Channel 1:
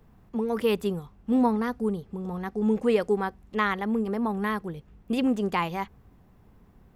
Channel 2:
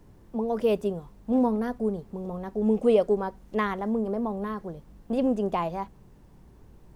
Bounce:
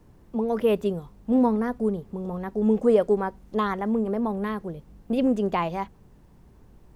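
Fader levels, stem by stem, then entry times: -7.0, -1.0 dB; 0.00, 0.00 s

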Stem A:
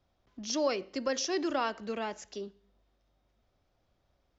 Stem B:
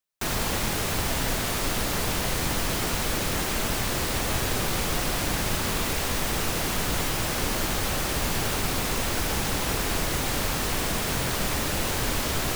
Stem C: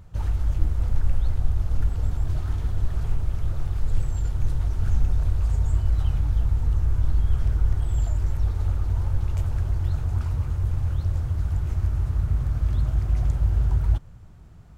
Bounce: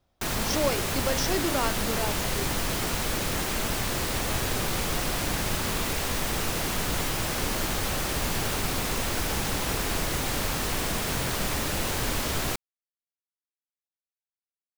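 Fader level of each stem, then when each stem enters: +2.5 dB, -1.5 dB, off; 0.00 s, 0.00 s, off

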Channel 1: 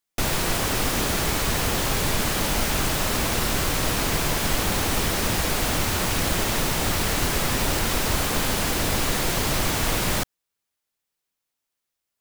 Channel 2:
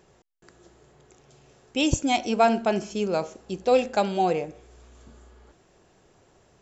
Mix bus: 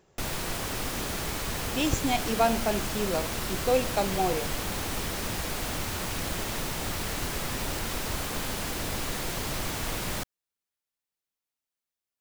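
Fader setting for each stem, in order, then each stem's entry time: -8.5, -4.5 dB; 0.00, 0.00 s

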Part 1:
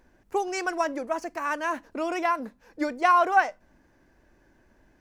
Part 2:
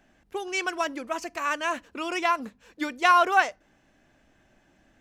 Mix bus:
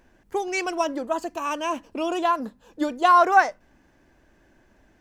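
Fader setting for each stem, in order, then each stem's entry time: +1.0, -3.5 dB; 0.00, 0.00 s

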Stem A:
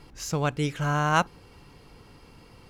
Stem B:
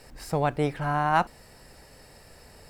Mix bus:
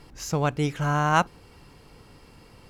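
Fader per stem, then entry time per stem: 0.0, -11.5 dB; 0.00, 0.00 s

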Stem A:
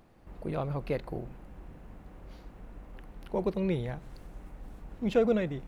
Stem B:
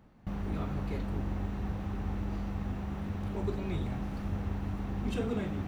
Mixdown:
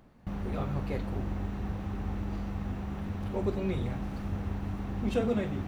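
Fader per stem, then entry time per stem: -6.0, +0.5 dB; 0.00, 0.00 s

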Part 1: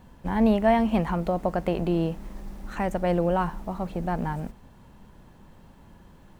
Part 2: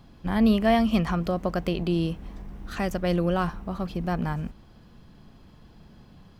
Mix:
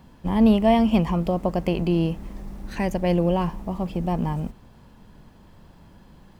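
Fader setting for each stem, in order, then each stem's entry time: -0.5, -3.0 dB; 0.00, 0.00 s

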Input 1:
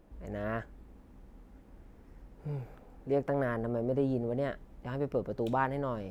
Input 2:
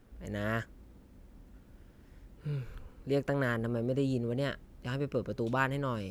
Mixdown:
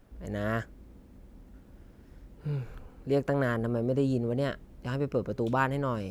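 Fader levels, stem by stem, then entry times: -5.0, 0.0 dB; 0.00, 0.00 s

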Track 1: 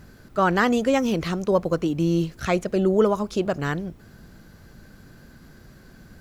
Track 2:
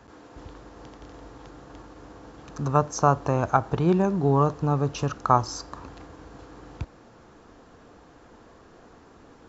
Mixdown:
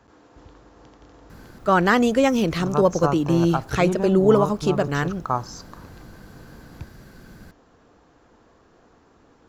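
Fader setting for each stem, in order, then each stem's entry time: +2.5, -4.5 dB; 1.30, 0.00 s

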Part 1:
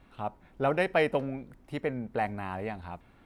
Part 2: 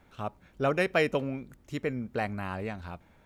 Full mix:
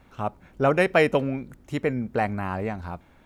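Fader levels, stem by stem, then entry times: -1.0, +2.5 dB; 0.00, 0.00 s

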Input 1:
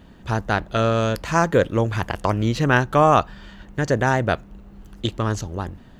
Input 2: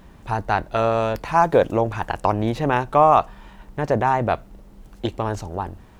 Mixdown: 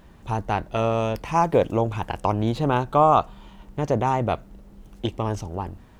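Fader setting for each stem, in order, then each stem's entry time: -12.0, -3.5 dB; 0.00, 0.00 s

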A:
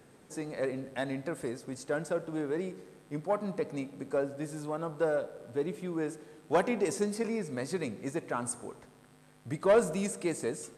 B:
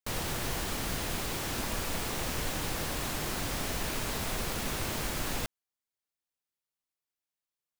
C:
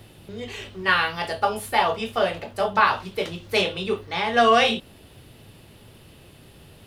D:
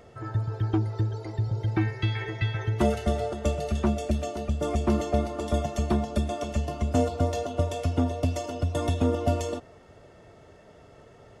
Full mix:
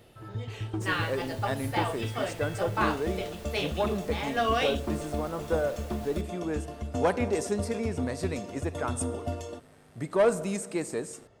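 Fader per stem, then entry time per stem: +1.0, -15.5, -10.0, -8.5 dB; 0.50, 0.75, 0.00, 0.00 s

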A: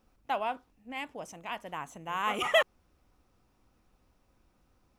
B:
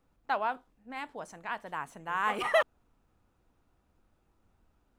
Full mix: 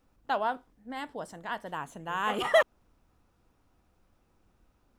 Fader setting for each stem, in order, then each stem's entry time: -4.5, +1.0 dB; 0.00, 0.00 s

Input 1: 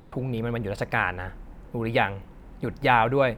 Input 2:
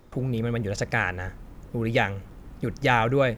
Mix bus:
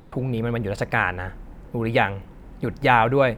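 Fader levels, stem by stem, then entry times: +2.0, -12.5 dB; 0.00, 0.00 s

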